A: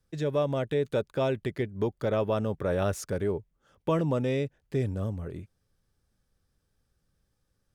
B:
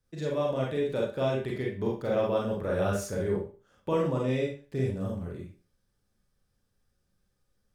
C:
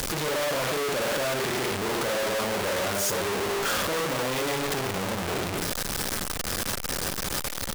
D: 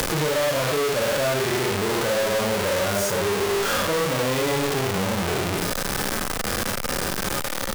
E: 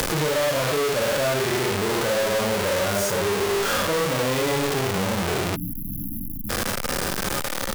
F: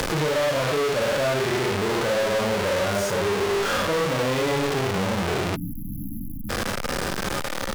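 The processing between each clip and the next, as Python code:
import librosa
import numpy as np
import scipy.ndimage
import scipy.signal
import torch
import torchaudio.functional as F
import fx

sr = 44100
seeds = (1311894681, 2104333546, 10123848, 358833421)

y1 = fx.rev_schroeder(x, sr, rt60_s=0.35, comb_ms=31, drr_db=-3.0)
y1 = y1 * 10.0 ** (-5.0 / 20.0)
y2 = np.sign(y1) * np.sqrt(np.mean(np.square(y1)))
y2 = fx.low_shelf(y2, sr, hz=240.0, db=-11.0)
y2 = y2 * 10.0 ** (6.5 / 20.0)
y3 = fx.hpss(y2, sr, part='percussive', gain_db=-15)
y3 = fx.band_squash(y3, sr, depth_pct=70)
y3 = y3 * 10.0 ** (7.0 / 20.0)
y4 = fx.spec_erase(y3, sr, start_s=5.56, length_s=0.94, low_hz=310.0, high_hz=11000.0)
y5 = fx.high_shelf(y4, sr, hz=8100.0, db=-11.0)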